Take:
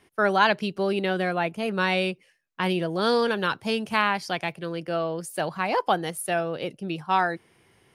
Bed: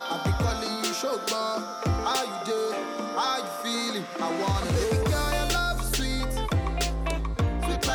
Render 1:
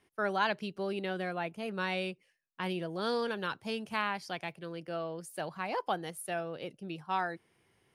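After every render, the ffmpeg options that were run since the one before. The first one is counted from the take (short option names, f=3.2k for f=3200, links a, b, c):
-af "volume=-10dB"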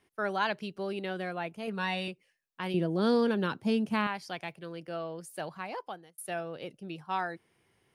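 -filter_complex "[0:a]asettb=1/sr,asplit=3[a][b][c];[a]atrim=end=1.674[d];[b]atrim=start=1.67:end=2.08,asetpts=PTS-STARTPTS,afade=t=in:d=0.004:c=qsin,afade=t=out:st=0.406:d=0.004:c=qsin,aecho=1:1:4.3:0.65,atrim=end_sample=18081[e];[c]atrim=start=2.076[f];[d][e]acrossfade=d=0.004:c1=hsin:c2=qsin[g];[g][f]acrossfade=d=0.004:c1=qsin:c2=hsin,asettb=1/sr,asplit=3[h][i][j];[h]atrim=end=2.744[k];[i]atrim=start=2.74:end=4.07,asetpts=PTS-STARTPTS,afade=t=in:d=0.004:c=qsin,afade=t=out:st=1.326:d=0.004:c=qsin,equalizer=f=230:w=0.68:g=12[l];[j]atrim=start=4.066[m];[k][l]acrossfade=d=0.004:c1=hsin:c2=qsin[n];[n][m]acrossfade=d=0.004:c1=qsin:c2=hsin,asplit=2[o][p];[o]atrim=end=6.18,asetpts=PTS-STARTPTS,afade=t=out:st=5.47:d=0.71[q];[p]atrim=start=6.18,asetpts=PTS-STARTPTS,afade=t=in:d=0.004:c=hsin[r];[q][r]concat=n=2:v=0:a=1"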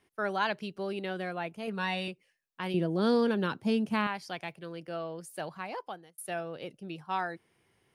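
-af anull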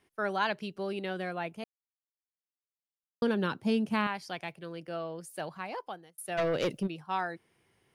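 -filter_complex "[0:a]asplit=3[a][b][c];[a]afade=t=out:st=6.37:d=0.02[d];[b]aeval=exprs='0.0668*sin(PI/2*3.16*val(0)/0.0668)':c=same,afade=t=in:st=6.37:d=0.02,afade=t=out:st=6.86:d=0.02[e];[c]afade=t=in:st=6.86:d=0.02[f];[d][e][f]amix=inputs=3:normalize=0,asplit=3[g][h][i];[g]atrim=end=1.64,asetpts=PTS-STARTPTS,afade=t=out:st=1.636:d=0.004:c=hsin[j];[h]atrim=start=1.64:end=3.22,asetpts=PTS-STARTPTS,volume=0[k];[i]atrim=start=3.22,asetpts=PTS-STARTPTS,afade=t=in:d=0.004:c=hsin[l];[j][k][l]concat=n=3:v=0:a=1"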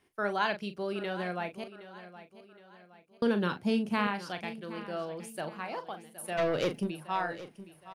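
-filter_complex "[0:a]asplit=2[a][b];[b]adelay=39,volume=-10dB[c];[a][c]amix=inputs=2:normalize=0,aecho=1:1:768|1536|2304|3072:0.178|0.0765|0.0329|0.0141"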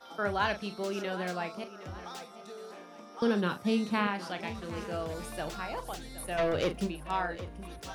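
-filter_complex "[1:a]volume=-18dB[a];[0:a][a]amix=inputs=2:normalize=0"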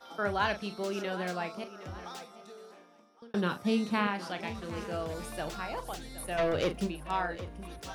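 -filter_complex "[0:a]asplit=2[a][b];[a]atrim=end=3.34,asetpts=PTS-STARTPTS,afade=t=out:st=2.06:d=1.28[c];[b]atrim=start=3.34,asetpts=PTS-STARTPTS,afade=t=in:d=0.004:c=hsin[d];[c][d]concat=n=2:v=0:a=1"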